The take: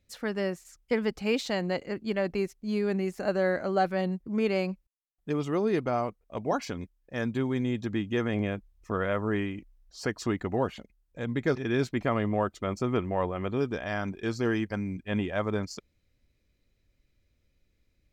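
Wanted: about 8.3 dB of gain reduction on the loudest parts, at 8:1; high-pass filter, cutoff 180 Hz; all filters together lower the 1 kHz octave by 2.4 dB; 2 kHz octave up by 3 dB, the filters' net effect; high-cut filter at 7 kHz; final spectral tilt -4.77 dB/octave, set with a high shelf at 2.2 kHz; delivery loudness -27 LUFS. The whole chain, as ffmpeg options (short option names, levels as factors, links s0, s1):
-af "highpass=180,lowpass=7000,equalizer=f=1000:t=o:g=-4.5,equalizer=f=2000:t=o:g=8,highshelf=f=2200:g=-5.5,acompressor=threshold=0.0282:ratio=8,volume=3.16"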